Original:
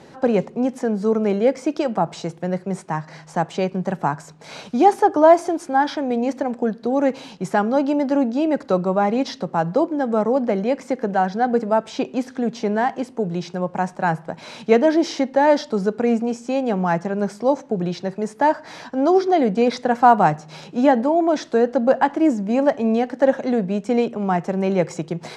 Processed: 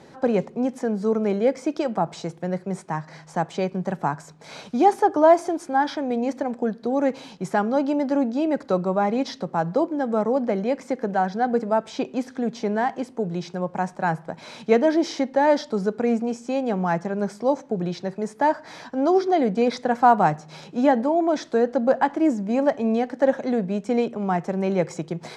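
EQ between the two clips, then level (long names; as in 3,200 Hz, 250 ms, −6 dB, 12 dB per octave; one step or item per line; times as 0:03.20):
notch filter 2,800 Hz, Q 19
−3.0 dB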